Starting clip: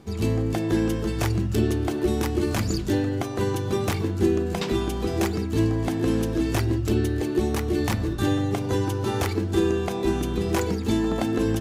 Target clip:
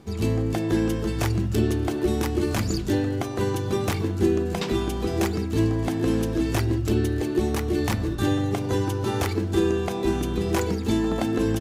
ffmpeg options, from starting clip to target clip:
ffmpeg -i in.wav -af "aecho=1:1:894:0.0631" out.wav

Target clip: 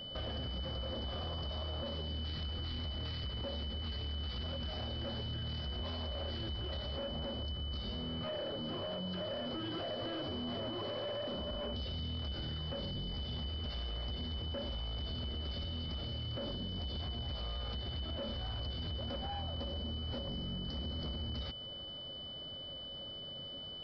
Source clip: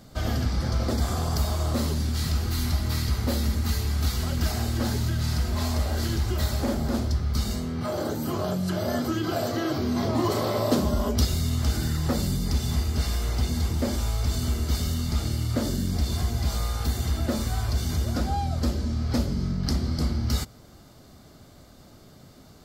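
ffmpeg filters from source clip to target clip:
ffmpeg -i in.wav -af "equalizer=frequency=550:width=4.9:gain=12.5,alimiter=limit=-16.5dB:level=0:latency=1:release=101,aeval=exprs='0.15*(cos(1*acos(clip(val(0)/0.15,-1,1)))-cos(1*PI/2))+0.00237*(cos(3*acos(clip(val(0)/0.15,-1,1)))-cos(3*PI/2))+0.00299*(cos(4*acos(clip(val(0)/0.15,-1,1)))-cos(4*PI/2))+0.015*(cos(5*acos(clip(val(0)/0.15,-1,1)))-cos(5*PI/2))+0.00266*(cos(8*acos(clip(val(0)/0.15,-1,1)))-cos(8*PI/2))':channel_layout=same,acompressor=threshold=-30dB:ratio=8,atempo=0.95,aresample=11025,volume=30dB,asoftclip=hard,volume=-30dB,aresample=44100,aeval=exprs='val(0)+0.0141*sin(2*PI*3000*n/s)':channel_layout=same,volume=-7dB" out.wav

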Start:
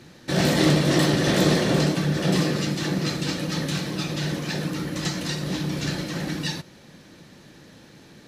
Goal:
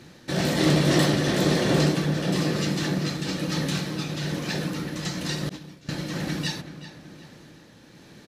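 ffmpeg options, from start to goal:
ffmpeg -i in.wav -filter_complex "[0:a]tremolo=f=1.1:d=0.36,asplit=2[link_01][link_02];[link_02]adelay=378,lowpass=frequency=3000:poles=1,volume=-12dB,asplit=2[link_03][link_04];[link_04]adelay=378,lowpass=frequency=3000:poles=1,volume=0.49,asplit=2[link_05][link_06];[link_06]adelay=378,lowpass=frequency=3000:poles=1,volume=0.49,asplit=2[link_07][link_08];[link_08]adelay=378,lowpass=frequency=3000:poles=1,volume=0.49,asplit=2[link_09][link_10];[link_10]adelay=378,lowpass=frequency=3000:poles=1,volume=0.49[link_11];[link_01][link_03][link_05][link_07][link_09][link_11]amix=inputs=6:normalize=0,asettb=1/sr,asplit=3[link_12][link_13][link_14];[link_12]atrim=end=5.494[link_15];[link_13]atrim=start=5.49:end=5.89,asetpts=PTS-STARTPTS,afade=type=in:duration=0.004:curve=qsin,afade=type=out:start_time=0.396:duration=0.004:curve=qsin,agate=range=-33dB:threshold=-18dB:ratio=3:detection=peak[link_16];[link_14]atrim=start=5.886[link_17];[link_15][link_16]acrossfade=duration=0.004:curve1=hsin:curve2=qsin[link_18];[link_18][link_17]acrossfade=duration=0.004:curve1=qsin:curve2=hsin" out.wav

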